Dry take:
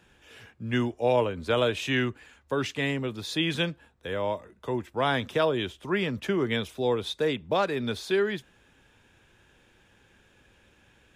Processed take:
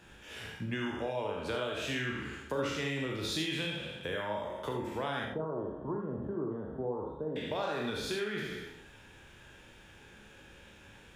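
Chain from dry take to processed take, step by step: spectral trails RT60 0.80 s; compressor 6:1, threshold -36 dBFS, peak gain reduction 16.5 dB; 5.25–7.36 inverse Chebyshev low-pass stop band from 2100 Hz, stop band 40 dB; flutter echo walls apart 6.6 m, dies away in 0.23 s; non-linear reverb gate 0.1 s rising, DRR 3.5 dB; gain +1.5 dB

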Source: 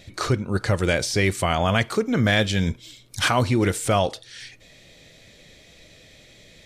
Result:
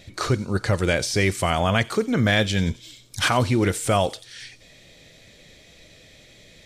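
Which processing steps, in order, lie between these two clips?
thin delay 90 ms, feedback 56%, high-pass 4700 Hz, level -12.5 dB

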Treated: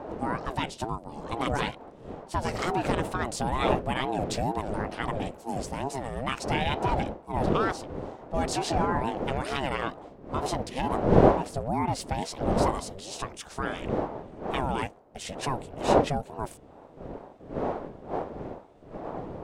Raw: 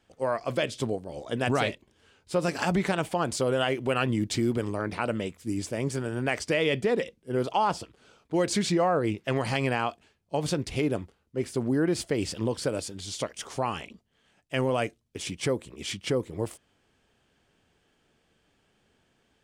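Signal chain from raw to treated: wind noise 300 Hz -29 dBFS; ring modulator with a swept carrier 430 Hz, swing 35%, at 2.2 Hz

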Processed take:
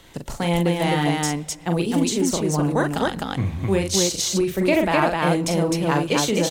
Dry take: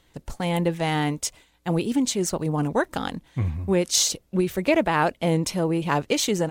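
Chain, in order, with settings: loudspeakers at several distances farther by 14 m -5 dB, 88 m -2 dB; on a send at -21 dB: reverb RT60 2.3 s, pre-delay 3 ms; on the sum: three-band squash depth 40%

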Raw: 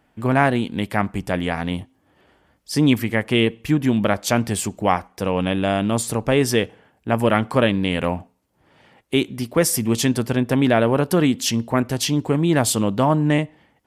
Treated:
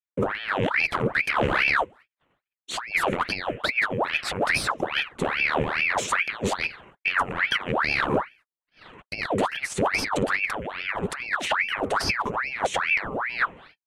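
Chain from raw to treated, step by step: block floating point 7-bit; gate -53 dBFS, range -51 dB; high shelf 11000 Hz +4.5 dB; negative-ratio compressor -24 dBFS, ratio -0.5; hard clip -20.5 dBFS, distortion -10 dB; fixed phaser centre 1700 Hz, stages 6; pitch shift -4 st; air absorption 92 m; ring modulator with a swept carrier 1400 Hz, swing 80%, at 2.4 Hz; gain +8 dB

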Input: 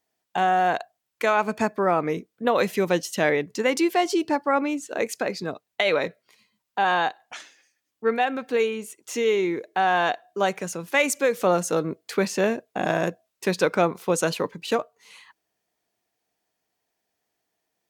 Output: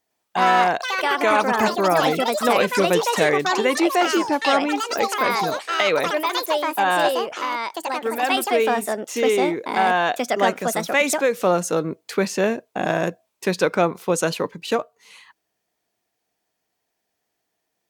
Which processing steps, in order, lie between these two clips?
echoes that change speed 0.104 s, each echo +5 st, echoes 3; 7.36–8.23 compressor 1.5:1, threshold -31 dBFS, peak gain reduction 5.5 dB; gain +2 dB

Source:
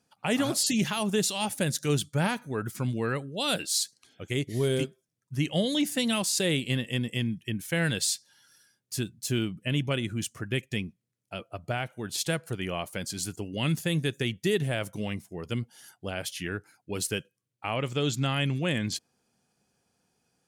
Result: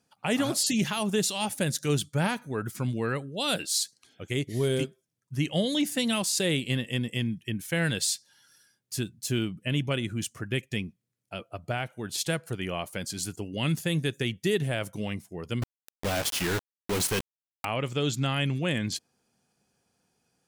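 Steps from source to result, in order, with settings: 15.62–17.65 companded quantiser 2-bit

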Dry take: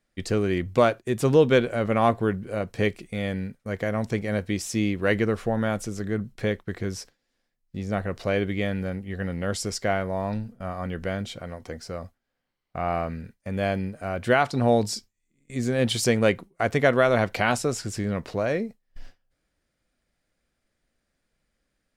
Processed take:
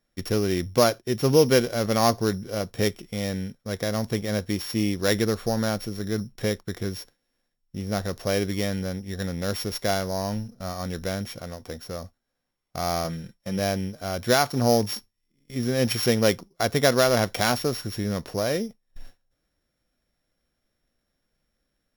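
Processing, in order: sample sorter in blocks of 8 samples; 13.04–13.59 comb 5.8 ms, depth 56%

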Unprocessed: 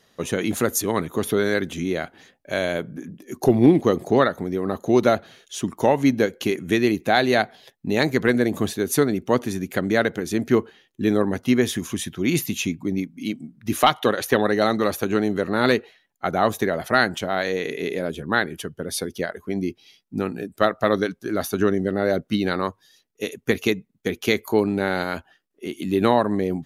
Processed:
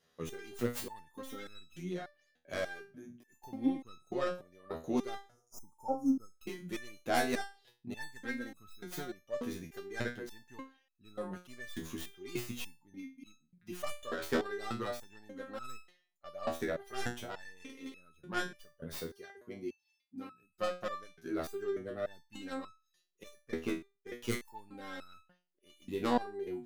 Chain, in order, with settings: tracing distortion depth 0.28 ms; 5.25–6.32 spectral delete 1400–4900 Hz; 18.96–20.44 HPF 45 Hz; 23.35–24.08 high shelf 3500 Hz -11 dB; stepped resonator 3.4 Hz 81–1300 Hz; gain -4.5 dB

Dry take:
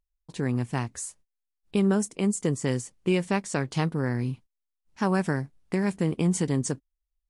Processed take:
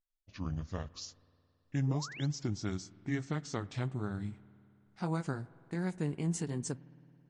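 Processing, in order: gliding pitch shift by -8.5 st ending unshifted; painted sound rise, 1.87–2.26, 370–4400 Hz -39 dBFS; spring tank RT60 2.8 s, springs 54 ms, chirp 75 ms, DRR 19.5 dB; gain -8.5 dB

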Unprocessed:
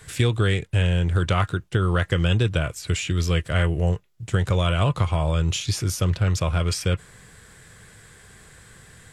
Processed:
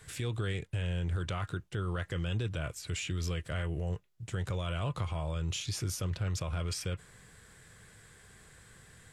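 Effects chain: limiter -17.5 dBFS, peak gain reduction 9.5 dB; gain -8 dB

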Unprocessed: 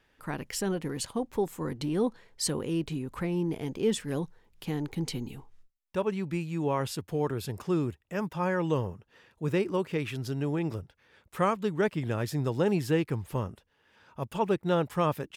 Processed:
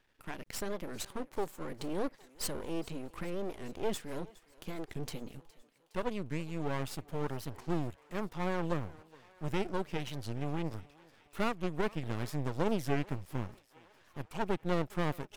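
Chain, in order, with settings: half-wave rectifier; thinning echo 0.414 s, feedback 70%, high-pass 440 Hz, level -20.5 dB; record warp 45 rpm, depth 250 cents; gain -2 dB

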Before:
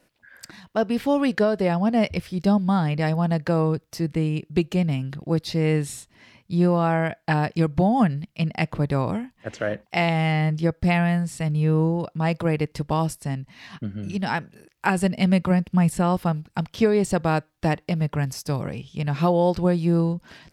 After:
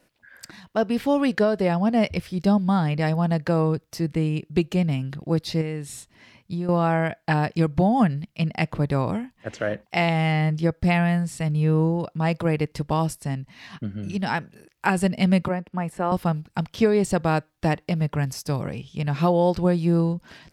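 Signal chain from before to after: 5.61–6.69 compressor 4:1, threshold -27 dBFS, peak gain reduction 11 dB; 15.48–16.12 three-band isolator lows -14 dB, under 280 Hz, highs -13 dB, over 2200 Hz

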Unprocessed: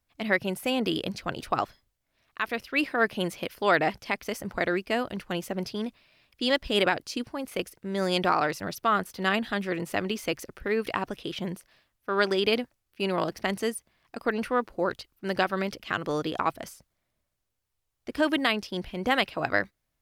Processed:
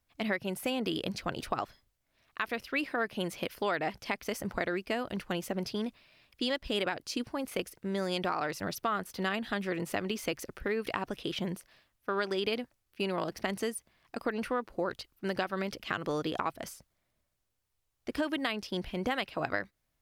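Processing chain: compressor 4:1, threshold -29 dBFS, peak gain reduction 10.5 dB

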